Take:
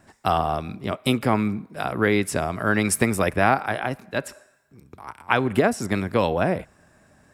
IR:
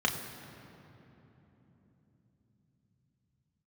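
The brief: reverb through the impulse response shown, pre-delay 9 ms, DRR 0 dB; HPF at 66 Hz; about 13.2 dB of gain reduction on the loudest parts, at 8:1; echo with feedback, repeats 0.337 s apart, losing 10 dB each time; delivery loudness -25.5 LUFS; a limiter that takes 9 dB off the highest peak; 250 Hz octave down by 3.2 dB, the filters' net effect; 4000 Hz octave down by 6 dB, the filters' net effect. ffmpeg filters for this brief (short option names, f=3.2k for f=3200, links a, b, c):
-filter_complex "[0:a]highpass=66,equalizer=f=250:t=o:g=-4,equalizer=f=4k:t=o:g=-8,acompressor=threshold=-29dB:ratio=8,alimiter=limit=-23dB:level=0:latency=1,aecho=1:1:337|674|1011|1348:0.316|0.101|0.0324|0.0104,asplit=2[a][b];[1:a]atrim=start_sample=2205,adelay=9[c];[b][c]afir=irnorm=-1:irlink=0,volume=-10dB[d];[a][d]amix=inputs=2:normalize=0,volume=7.5dB"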